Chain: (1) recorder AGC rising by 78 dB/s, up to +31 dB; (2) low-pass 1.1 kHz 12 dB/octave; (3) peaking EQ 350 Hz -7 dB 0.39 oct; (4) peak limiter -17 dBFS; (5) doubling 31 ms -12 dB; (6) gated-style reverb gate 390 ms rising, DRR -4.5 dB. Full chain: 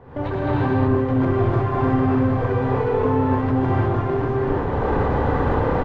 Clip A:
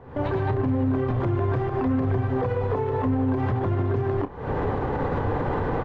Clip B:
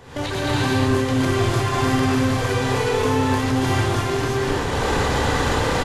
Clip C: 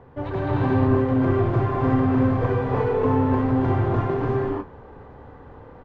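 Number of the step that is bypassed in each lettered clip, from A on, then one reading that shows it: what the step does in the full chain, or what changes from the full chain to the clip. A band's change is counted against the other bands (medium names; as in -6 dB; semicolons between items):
6, crest factor change -3.0 dB; 2, 2 kHz band +8.0 dB; 1, crest factor change +2.0 dB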